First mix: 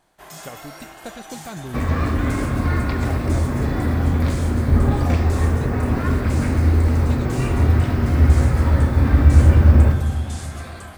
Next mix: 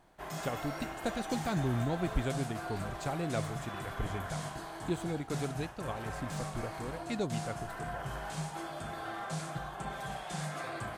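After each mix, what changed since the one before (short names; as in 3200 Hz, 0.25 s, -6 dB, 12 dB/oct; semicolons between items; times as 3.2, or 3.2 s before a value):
first sound: add high shelf 3600 Hz -9.5 dB; second sound: muted; master: add low shelf 350 Hz +2.5 dB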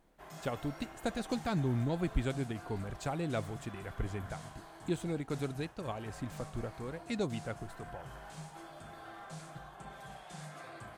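background -9.0 dB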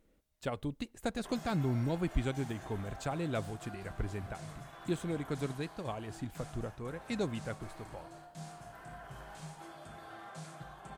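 background: entry +1.05 s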